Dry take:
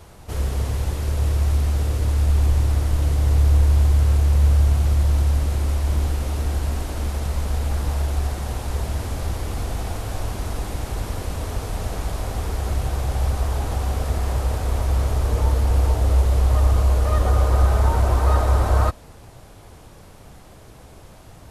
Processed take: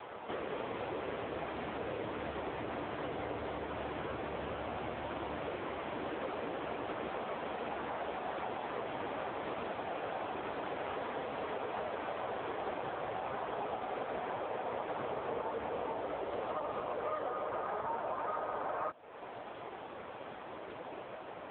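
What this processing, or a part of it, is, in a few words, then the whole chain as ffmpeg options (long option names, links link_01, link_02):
voicemail: -af "highpass=360,lowpass=2800,acompressor=threshold=-41dB:ratio=8,volume=8.5dB" -ar 8000 -c:a libopencore_amrnb -b:a 5900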